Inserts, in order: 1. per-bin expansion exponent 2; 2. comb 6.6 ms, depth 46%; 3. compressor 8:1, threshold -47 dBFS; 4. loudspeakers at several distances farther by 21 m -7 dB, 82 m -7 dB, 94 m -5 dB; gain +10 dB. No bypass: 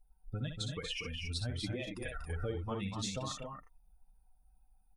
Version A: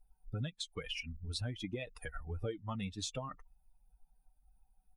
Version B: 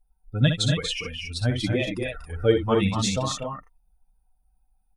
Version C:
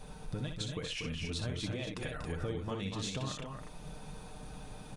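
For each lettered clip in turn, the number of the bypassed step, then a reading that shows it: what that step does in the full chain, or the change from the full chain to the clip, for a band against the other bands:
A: 4, echo-to-direct -1.5 dB to none; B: 3, mean gain reduction 10.0 dB; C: 1, momentary loudness spread change +6 LU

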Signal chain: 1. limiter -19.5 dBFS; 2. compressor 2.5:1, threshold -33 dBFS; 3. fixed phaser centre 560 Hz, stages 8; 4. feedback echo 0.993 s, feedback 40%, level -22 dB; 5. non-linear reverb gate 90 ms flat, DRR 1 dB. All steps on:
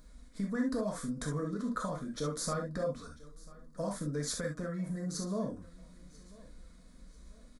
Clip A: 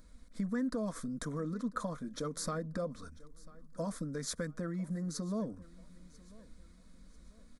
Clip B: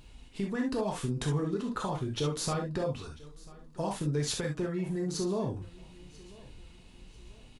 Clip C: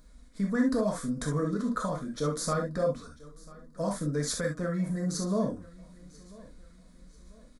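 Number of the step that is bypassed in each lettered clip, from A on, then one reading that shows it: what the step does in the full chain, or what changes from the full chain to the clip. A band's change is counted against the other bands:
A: 5, loudness change -2.0 LU; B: 3, 4 kHz band +3.5 dB; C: 2, momentary loudness spread change -6 LU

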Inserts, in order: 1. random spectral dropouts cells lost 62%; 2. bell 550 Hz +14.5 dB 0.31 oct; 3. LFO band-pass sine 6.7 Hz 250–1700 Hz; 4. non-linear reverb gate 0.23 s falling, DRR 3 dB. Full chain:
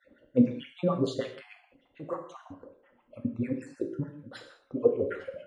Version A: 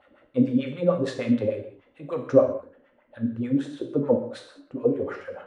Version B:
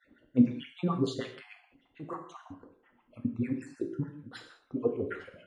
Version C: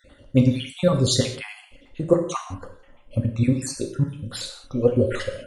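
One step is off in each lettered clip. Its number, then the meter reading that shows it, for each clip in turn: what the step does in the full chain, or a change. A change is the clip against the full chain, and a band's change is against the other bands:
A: 1, 500 Hz band +2.0 dB; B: 2, 500 Hz band -6.0 dB; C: 3, 4 kHz band +11.0 dB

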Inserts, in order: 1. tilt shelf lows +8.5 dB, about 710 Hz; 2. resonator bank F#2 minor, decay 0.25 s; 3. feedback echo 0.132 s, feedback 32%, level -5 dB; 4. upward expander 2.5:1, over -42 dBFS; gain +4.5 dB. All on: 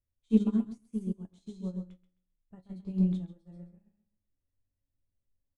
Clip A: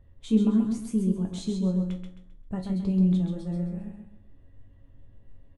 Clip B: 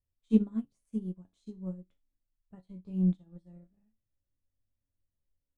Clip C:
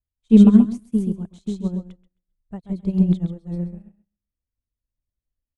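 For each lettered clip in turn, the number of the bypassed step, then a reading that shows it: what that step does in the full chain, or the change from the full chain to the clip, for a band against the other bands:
4, crest factor change -6.0 dB; 3, momentary loudness spread change -1 LU; 2, crest factor change -3.5 dB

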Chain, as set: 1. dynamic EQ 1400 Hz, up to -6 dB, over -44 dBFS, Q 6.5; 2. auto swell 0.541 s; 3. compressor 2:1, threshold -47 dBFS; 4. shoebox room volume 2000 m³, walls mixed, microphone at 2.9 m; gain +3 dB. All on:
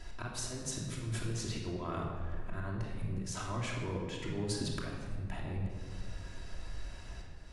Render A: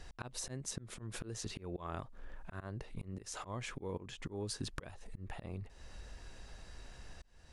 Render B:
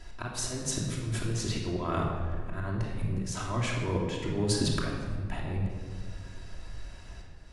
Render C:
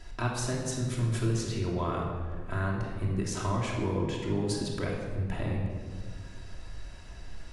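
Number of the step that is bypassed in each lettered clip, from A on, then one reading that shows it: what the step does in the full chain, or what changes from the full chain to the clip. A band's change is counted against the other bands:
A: 4, crest factor change +7.0 dB; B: 3, mean gain reduction 4.0 dB; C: 2, 4 kHz band -5.0 dB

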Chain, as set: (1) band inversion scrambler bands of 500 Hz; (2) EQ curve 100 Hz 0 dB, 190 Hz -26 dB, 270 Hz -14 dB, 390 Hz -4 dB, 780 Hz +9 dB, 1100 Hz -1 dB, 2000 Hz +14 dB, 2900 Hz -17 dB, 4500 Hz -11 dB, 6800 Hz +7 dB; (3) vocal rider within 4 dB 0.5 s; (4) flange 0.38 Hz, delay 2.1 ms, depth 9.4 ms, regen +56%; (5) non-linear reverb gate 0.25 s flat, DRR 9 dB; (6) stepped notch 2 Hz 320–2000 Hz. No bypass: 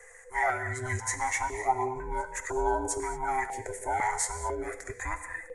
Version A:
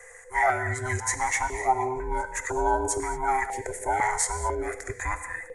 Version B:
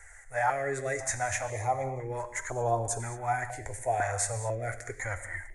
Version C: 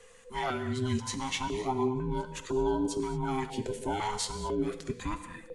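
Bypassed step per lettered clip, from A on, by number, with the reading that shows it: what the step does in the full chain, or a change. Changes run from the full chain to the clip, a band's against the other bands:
4, loudness change +4.0 LU; 1, 125 Hz band +6.0 dB; 2, 4 kHz band +12.0 dB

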